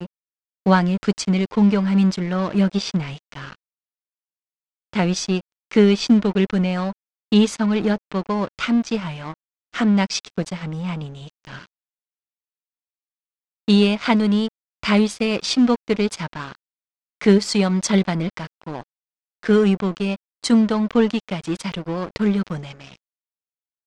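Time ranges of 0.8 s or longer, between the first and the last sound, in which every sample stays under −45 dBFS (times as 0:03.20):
0:03.55–0:04.93
0:11.66–0:13.68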